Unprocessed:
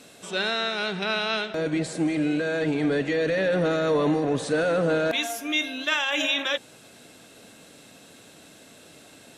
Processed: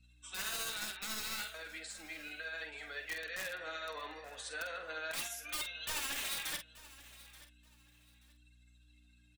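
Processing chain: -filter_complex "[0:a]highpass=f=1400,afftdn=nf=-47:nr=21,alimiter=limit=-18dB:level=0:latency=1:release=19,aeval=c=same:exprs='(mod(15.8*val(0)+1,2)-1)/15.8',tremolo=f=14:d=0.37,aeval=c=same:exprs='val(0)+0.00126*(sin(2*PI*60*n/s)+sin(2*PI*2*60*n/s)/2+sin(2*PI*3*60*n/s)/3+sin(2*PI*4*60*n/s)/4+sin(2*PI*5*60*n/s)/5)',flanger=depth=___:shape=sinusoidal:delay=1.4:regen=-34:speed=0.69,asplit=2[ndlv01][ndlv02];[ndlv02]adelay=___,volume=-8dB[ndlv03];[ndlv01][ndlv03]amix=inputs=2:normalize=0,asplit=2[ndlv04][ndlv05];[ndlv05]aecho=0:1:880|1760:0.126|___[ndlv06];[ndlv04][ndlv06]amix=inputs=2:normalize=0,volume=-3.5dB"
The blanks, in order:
4.9, 47, 0.029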